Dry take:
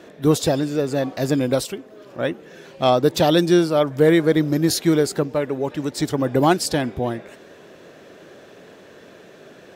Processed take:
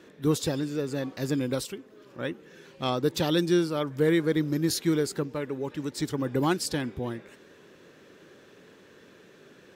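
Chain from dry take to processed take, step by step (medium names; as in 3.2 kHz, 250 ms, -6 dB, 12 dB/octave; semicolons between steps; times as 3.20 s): peaking EQ 670 Hz -11 dB 0.45 oct; trim -7 dB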